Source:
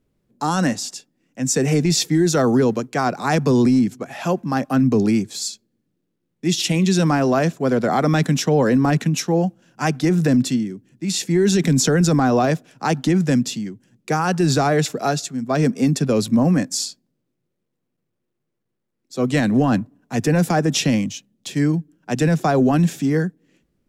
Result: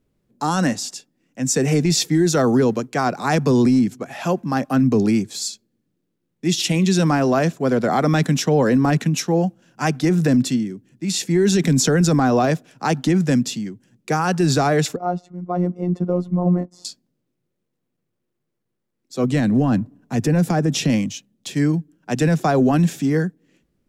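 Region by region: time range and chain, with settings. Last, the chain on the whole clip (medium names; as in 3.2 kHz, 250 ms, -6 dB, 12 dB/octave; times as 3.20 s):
14.96–16.85 s: expander -33 dBFS + Savitzky-Golay filter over 65 samples + robot voice 178 Hz
19.24–20.90 s: bass shelf 370 Hz +7.5 dB + compression 1.5:1, threshold -23 dBFS
whole clip: none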